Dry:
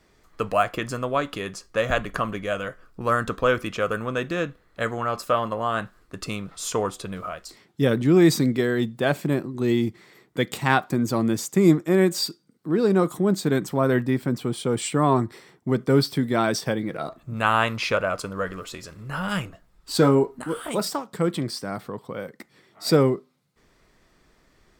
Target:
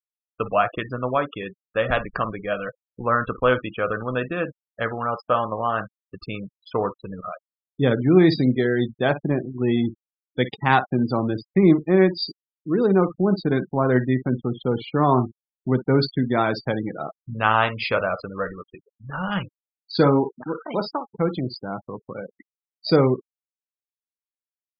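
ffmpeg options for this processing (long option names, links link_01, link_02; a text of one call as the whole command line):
ffmpeg -i in.wav -af "aecho=1:1:16|55:0.237|0.266,aresample=11025,aeval=exprs='sgn(val(0))*max(abs(val(0))-0.0075,0)':channel_layout=same,aresample=44100,adynamicequalizer=threshold=0.00562:dfrequency=820:dqfactor=5.5:tfrequency=820:tqfactor=5.5:attack=5:release=100:ratio=0.375:range=2:mode=boostabove:tftype=bell,afftfilt=real='re*gte(hypot(re,im),0.0316)':imag='im*gte(hypot(re,im),0.0316)':win_size=1024:overlap=0.75,volume=1dB" out.wav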